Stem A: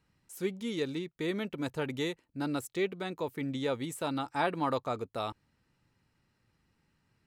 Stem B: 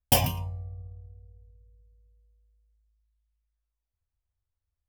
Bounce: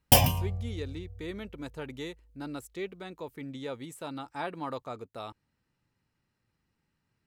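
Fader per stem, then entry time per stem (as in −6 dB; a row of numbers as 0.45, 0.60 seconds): −5.5, +2.5 decibels; 0.00, 0.00 seconds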